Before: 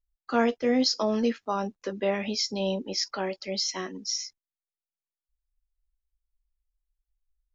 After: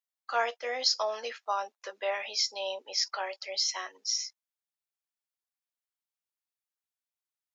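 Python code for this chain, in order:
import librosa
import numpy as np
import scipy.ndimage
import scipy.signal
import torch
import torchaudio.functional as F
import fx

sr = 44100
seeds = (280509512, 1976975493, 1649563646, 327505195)

y = scipy.signal.sosfilt(scipy.signal.butter(4, 630.0, 'highpass', fs=sr, output='sos'), x)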